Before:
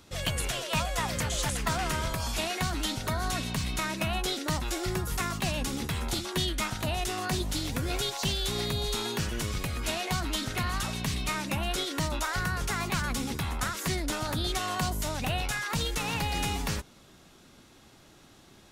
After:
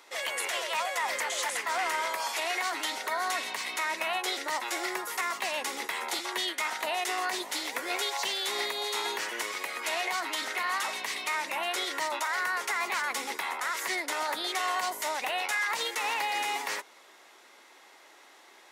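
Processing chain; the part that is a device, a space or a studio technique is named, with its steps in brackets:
0:02.27–0:02.72: Butterworth high-pass 240 Hz
laptop speaker (high-pass filter 390 Hz 24 dB per octave; parametric band 940 Hz +7 dB 0.59 octaves; parametric band 2,000 Hz +10.5 dB 0.42 octaves; brickwall limiter −20.5 dBFS, peak gain reduction 10.5 dB)

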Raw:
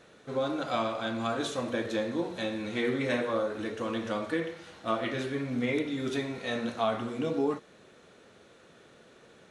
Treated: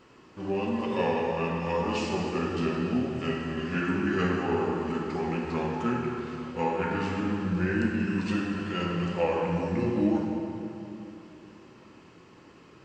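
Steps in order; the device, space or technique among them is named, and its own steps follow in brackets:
slowed and reverbed (speed change −26%; convolution reverb RT60 3.0 s, pre-delay 3 ms, DRR 0 dB)

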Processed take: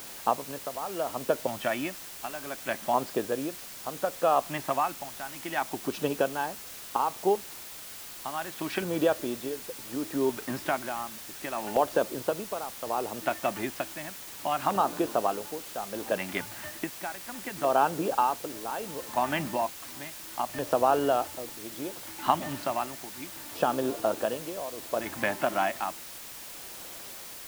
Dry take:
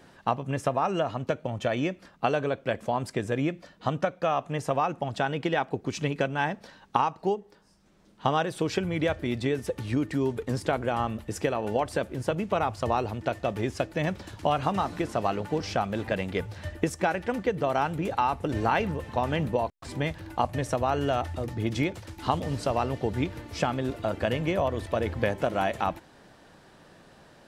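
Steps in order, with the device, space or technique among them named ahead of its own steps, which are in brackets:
shortwave radio (band-pass filter 310–2,900 Hz; amplitude tremolo 0.67 Hz, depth 80%; auto-filter notch square 0.34 Hz 470–2,100 Hz; white noise bed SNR 12 dB)
level +4.5 dB

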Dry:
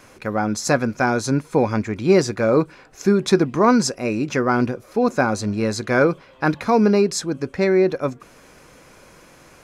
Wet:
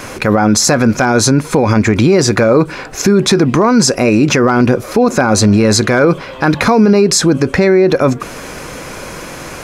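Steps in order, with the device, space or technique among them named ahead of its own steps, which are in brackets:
loud club master (downward compressor 2.5 to 1, threshold −20 dBFS, peak gain reduction 8 dB; hard clipping −11.5 dBFS, distortion −37 dB; boost into a limiter +21.5 dB)
level −1 dB

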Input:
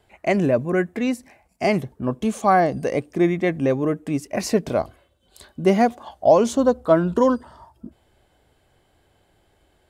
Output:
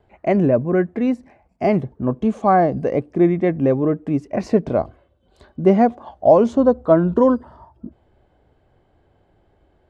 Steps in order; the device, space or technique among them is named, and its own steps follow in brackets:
through cloth (low-pass filter 6,500 Hz 12 dB per octave; high-shelf EQ 2,000 Hz −17 dB)
level +4 dB

